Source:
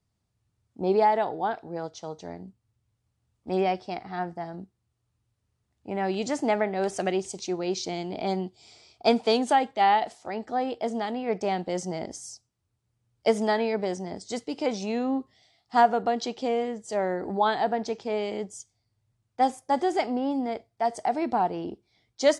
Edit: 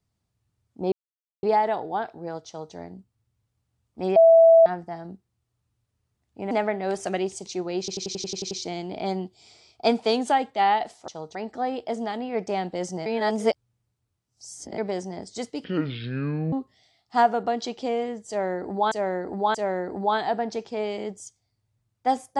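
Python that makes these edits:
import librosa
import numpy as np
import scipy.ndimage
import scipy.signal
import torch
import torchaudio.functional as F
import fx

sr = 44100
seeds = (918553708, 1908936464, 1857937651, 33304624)

y = fx.edit(x, sr, fx.insert_silence(at_s=0.92, length_s=0.51),
    fx.duplicate(start_s=1.96, length_s=0.27, to_s=10.29),
    fx.bleep(start_s=3.65, length_s=0.5, hz=659.0, db=-10.0),
    fx.cut(start_s=6.0, length_s=0.44),
    fx.stutter(start_s=7.72, slice_s=0.09, count=9),
    fx.reverse_span(start_s=12.0, length_s=1.72),
    fx.speed_span(start_s=14.58, length_s=0.54, speed=0.61),
    fx.repeat(start_s=16.88, length_s=0.63, count=3), tone=tone)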